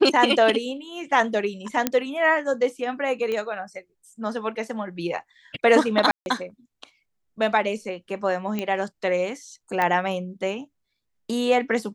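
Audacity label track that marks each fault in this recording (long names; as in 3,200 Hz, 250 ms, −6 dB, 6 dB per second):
1.870000	1.870000	click −5 dBFS
3.320000	3.320000	click −17 dBFS
6.110000	6.260000	drop-out 151 ms
8.590000	8.590000	click −14 dBFS
9.820000	9.820000	click −11 dBFS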